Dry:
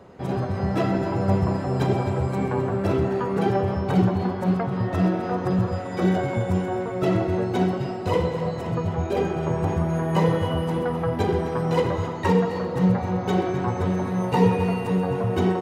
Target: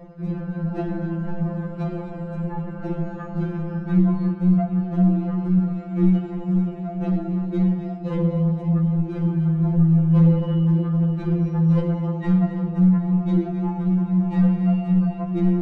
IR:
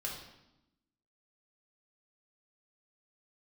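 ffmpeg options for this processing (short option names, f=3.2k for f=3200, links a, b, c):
-af "asoftclip=type=tanh:threshold=-17.5dB,aemphasis=mode=reproduction:type=riaa,areverse,acompressor=mode=upward:threshold=-18dB:ratio=2.5,areverse,afftfilt=real='re*2.83*eq(mod(b,8),0)':imag='im*2.83*eq(mod(b,8),0)':win_size=2048:overlap=0.75,volume=-3dB"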